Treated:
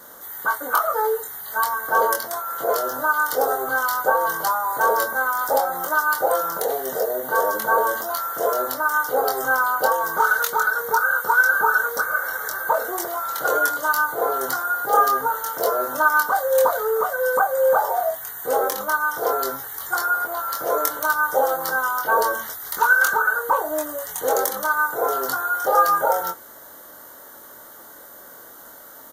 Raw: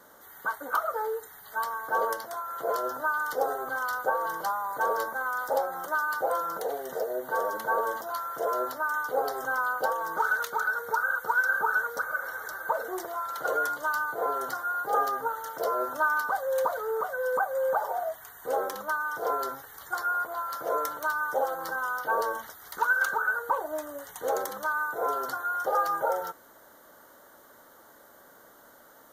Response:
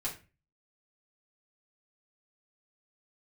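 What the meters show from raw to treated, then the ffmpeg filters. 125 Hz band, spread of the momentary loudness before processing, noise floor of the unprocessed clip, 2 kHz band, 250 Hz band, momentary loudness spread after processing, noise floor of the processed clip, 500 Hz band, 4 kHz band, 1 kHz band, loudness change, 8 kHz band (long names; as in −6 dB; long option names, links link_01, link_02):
can't be measured, 7 LU, −55 dBFS, +8.0 dB, +7.5 dB, 11 LU, −43 dBFS, +8.0 dB, +11.0 dB, +8.0 dB, +8.5 dB, +14.0 dB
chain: -filter_complex "[0:a]highshelf=frequency=6100:gain=9,asplit=2[link_01][link_02];[link_02]adelay=23,volume=-4dB[link_03];[link_01][link_03]amix=inputs=2:normalize=0,volume=6.5dB"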